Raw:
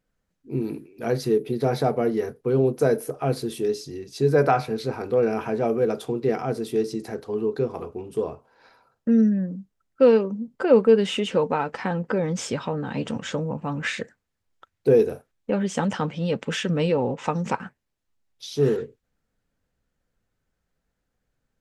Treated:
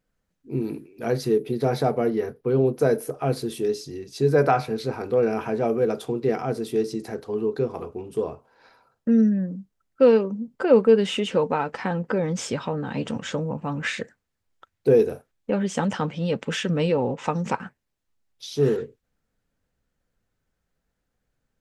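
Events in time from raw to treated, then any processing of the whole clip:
2.09–2.87 bell 7800 Hz -11 dB -> -3.5 dB 0.83 oct

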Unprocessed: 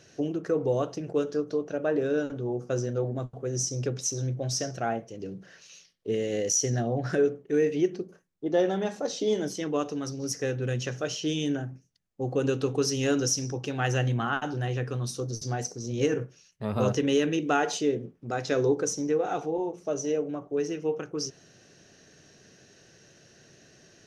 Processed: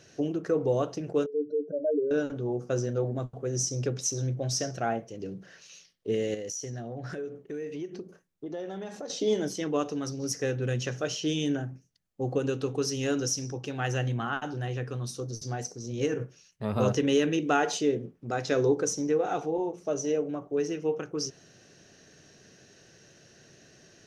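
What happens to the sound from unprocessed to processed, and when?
1.26–2.11 spectral contrast raised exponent 3.3
6.34–9.1 compressor 4:1, threshold -35 dBFS
12.38–16.2 gain -3 dB

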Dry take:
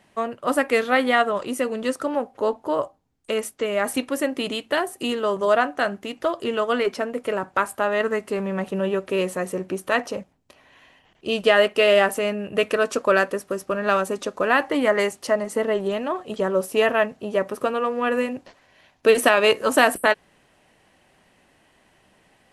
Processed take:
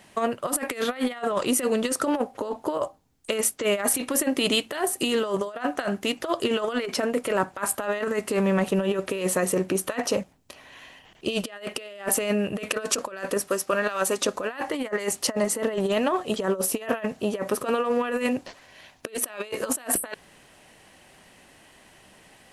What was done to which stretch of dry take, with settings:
13.48–14.22 low shelf 360 Hz -10.5 dB
whole clip: high shelf 3500 Hz +7 dB; negative-ratio compressor -25 dBFS, ratio -0.5

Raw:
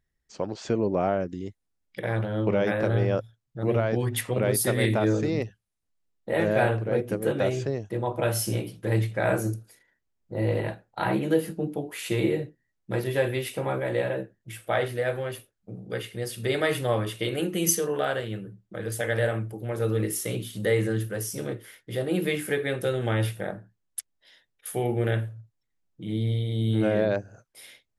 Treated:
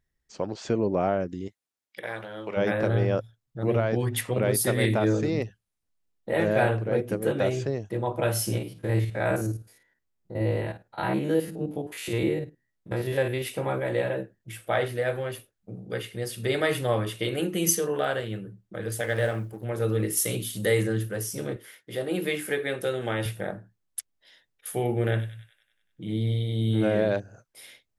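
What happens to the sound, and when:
1.47–2.56 HPF 590 Hz -> 1300 Hz 6 dB/oct
8.58–13.42 stepped spectrum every 50 ms
19–19.64 G.711 law mismatch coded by A
20.17–20.83 high shelf 4400 Hz +10 dB
21.56–23.26 HPF 260 Hz 6 dB/oct
25.1–27.2 thin delay 96 ms, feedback 59%, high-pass 2900 Hz, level -7 dB

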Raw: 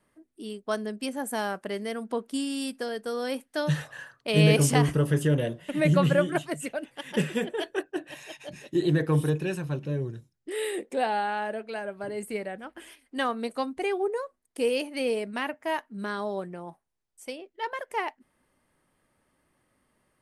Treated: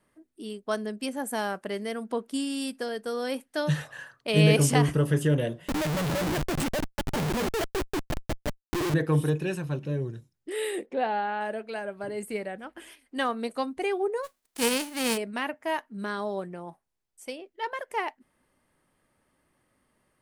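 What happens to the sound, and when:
5.68–8.94 Schmitt trigger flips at -35 dBFS
10.86–11.41 air absorption 220 m
14.23–15.16 spectral whitening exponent 0.3

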